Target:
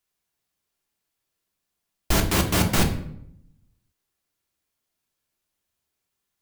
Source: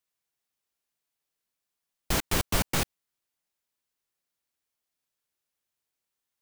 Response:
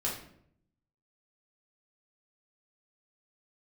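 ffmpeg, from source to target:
-filter_complex "[0:a]asettb=1/sr,asplit=3[a][b][c];[a]atrim=end=2.294[d];[b]atrim=start=2.29:end=2.77,asetpts=PTS-STARTPTS,afade=t=in:d=0.004:c=qsin,afade=t=out:st=0.476:d=0.004:c=qsin,highpass=90[e];[c]atrim=start=2.766[f];[d][e]acrossfade=d=0.004:c1=hsin:c2=qsin[g];[g][f]acrossfade=d=0.004:c1=qsin:c2=hsin,asplit=2[h][i];[1:a]atrim=start_sample=2205,asetrate=39249,aresample=44100,lowshelf=f=320:g=7[j];[i][j]afir=irnorm=-1:irlink=0,volume=-5dB[k];[h][k]amix=inputs=2:normalize=0"

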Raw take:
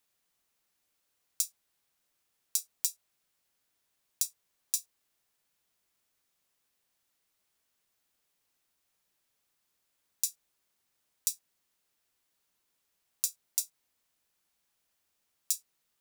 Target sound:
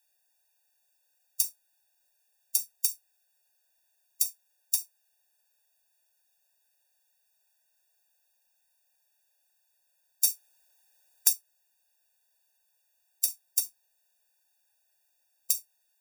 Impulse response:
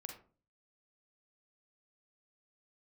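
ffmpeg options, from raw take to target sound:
-filter_complex "[0:a]asplit=2[a][b];[b]aderivative[c];[1:a]atrim=start_sample=2205,atrim=end_sample=3528[d];[c][d]afir=irnorm=-1:irlink=0,volume=1.5dB[e];[a][e]amix=inputs=2:normalize=0,asettb=1/sr,asplit=3[f][g][h];[f]atrim=end=10.244[i];[g]atrim=start=10.24:end=11.33,asetpts=PTS-STARTPTS,afade=t=in:d=0.004:c=qsin,afade=t=out:st=1.086:d=0.004:c=qsin,acontrast=49[j];[h]atrim=start=11.326[k];[i][j]acrossfade=d=0.004:c1=hsin:c2=qsin[l];[l][k]acrossfade=d=0.004:c1=qsin:c2=hsin,bandreject=f=600:w=16,afftfilt=real='re*eq(mod(floor(b*sr/1024/480),2),1)':imag='im*eq(mod(floor(b*sr/1024/480),2),1)':win_size=1024:overlap=0.75,volume=3.5dB"

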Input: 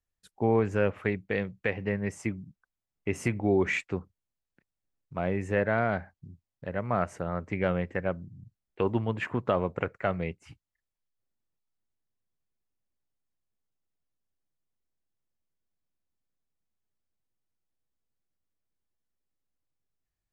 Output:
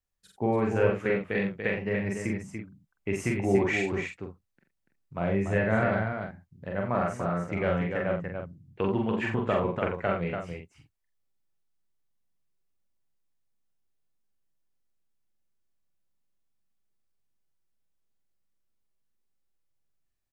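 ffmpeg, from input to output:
-filter_complex "[0:a]asettb=1/sr,asplit=3[a][b][c];[a]atrim=end=5.144[d];[b]atrim=start=5.14:end=5.84,asetpts=PTS-STARTPTS,afade=t=in:d=0.004:c=qsin,afade=t=out:st=0.696:d=0.004:c=qsin,asubboost=boost=8.5:cutoff=220[e];[c]atrim=start=5.836[f];[d][e]acrossfade=d=0.004:c1=hsin:c2=qsin[g];[g][f]acrossfade=d=0.004:c1=qsin:c2=hsin,asplit=2[h][i];[i]adelay=46,volume=-5dB[j];[h][j]amix=inputs=2:normalize=0,aecho=1:1:40.82|288.6:0.631|0.501,volume=-1.5dB"

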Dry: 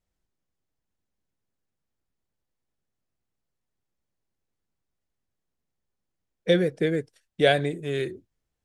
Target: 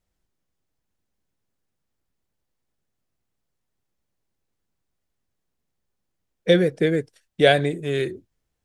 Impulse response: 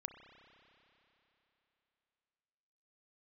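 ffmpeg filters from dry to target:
-af "volume=4dB"

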